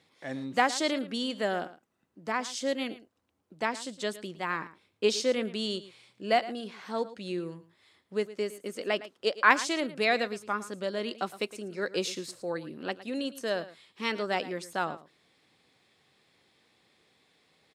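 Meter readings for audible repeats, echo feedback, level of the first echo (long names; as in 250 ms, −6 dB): 1, repeats not evenly spaced, −16.0 dB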